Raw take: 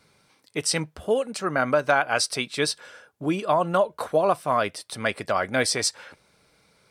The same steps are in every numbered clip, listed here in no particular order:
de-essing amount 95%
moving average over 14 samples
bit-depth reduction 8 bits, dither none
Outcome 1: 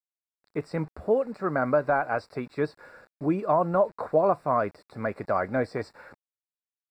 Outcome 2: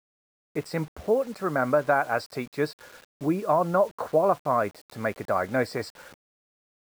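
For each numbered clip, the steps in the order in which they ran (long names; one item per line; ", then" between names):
de-essing, then bit-depth reduction, then moving average
moving average, then de-essing, then bit-depth reduction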